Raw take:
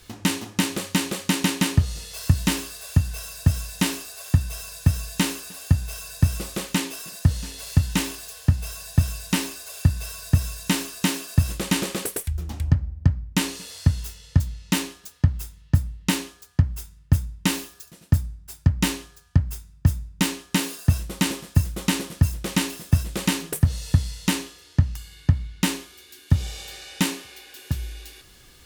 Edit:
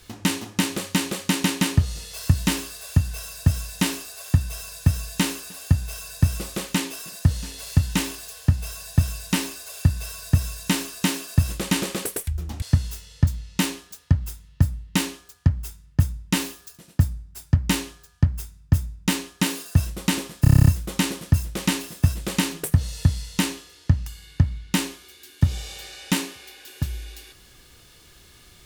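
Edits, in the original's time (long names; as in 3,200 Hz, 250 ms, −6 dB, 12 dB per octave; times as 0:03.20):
0:12.62–0:13.75: remove
0:21.55: stutter 0.03 s, 9 plays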